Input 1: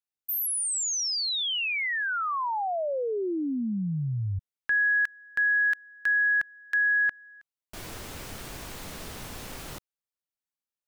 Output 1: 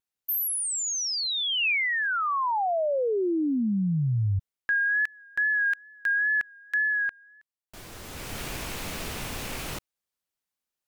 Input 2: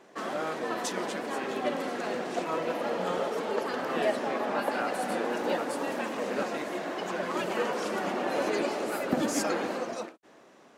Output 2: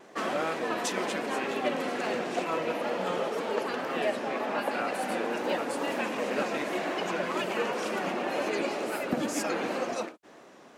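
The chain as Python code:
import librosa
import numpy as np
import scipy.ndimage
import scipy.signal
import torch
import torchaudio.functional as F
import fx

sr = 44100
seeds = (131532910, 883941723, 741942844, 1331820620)

y = fx.wow_flutter(x, sr, seeds[0], rate_hz=2.1, depth_cents=48.0)
y = fx.rider(y, sr, range_db=5, speed_s=0.5)
y = fx.dynamic_eq(y, sr, hz=2500.0, q=2.6, threshold_db=-48.0, ratio=4.0, max_db=5)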